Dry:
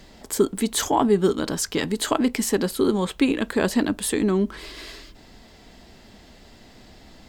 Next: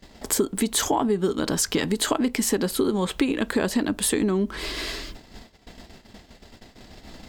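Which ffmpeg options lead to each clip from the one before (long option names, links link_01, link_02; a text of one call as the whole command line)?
ffmpeg -i in.wav -af "agate=range=-22dB:threshold=-46dB:ratio=16:detection=peak,acompressor=threshold=-28dB:ratio=6,volume=8dB" out.wav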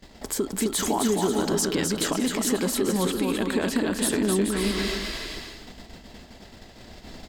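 ffmpeg -i in.wav -filter_complex "[0:a]alimiter=limit=-15.5dB:level=0:latency=1:release=190,asplit=2[link_01][link_02];[link_02]aecho=0:1:260|429|538.8|610.3|656.7:0.631|0.398|0.251|0.158|0.1[link_03];[link_01][link_03]amix=inputs=2:normalize=0" out.wav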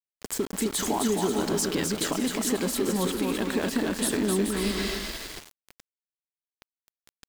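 ffmpeg -i in.wav -af "aeval=exprs='val(0)*gte(abs(val(0)),0.0266)':channel_layout=same,volume=-2dB" out.wav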